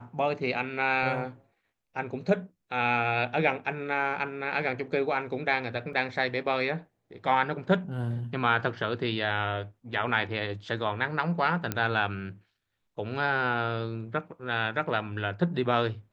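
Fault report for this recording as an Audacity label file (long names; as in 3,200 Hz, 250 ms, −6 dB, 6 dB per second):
5.930000	5.930000	drop-out 3.4 ms
11.720000	11.720000	click −13 dBFS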